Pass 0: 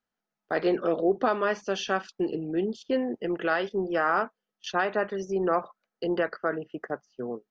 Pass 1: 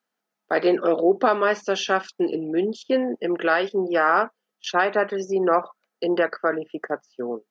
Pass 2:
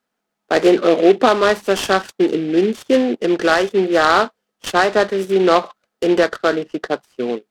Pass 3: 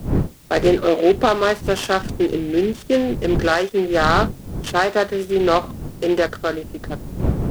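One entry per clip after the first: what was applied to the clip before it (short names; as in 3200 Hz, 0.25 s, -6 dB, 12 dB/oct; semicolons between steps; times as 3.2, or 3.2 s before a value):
HPF 230 Hz 12 dB/oct; gain +6 dB
low shelf 410 Hz +5 dB; noise-modulated delay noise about 2300 Hz, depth 0.039 ms; gain +4.5 dB
ending faded out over 1.40 s; wind noise 200 Hz -24 dBFS; requantised 8-bit, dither triangular; gain -3 dB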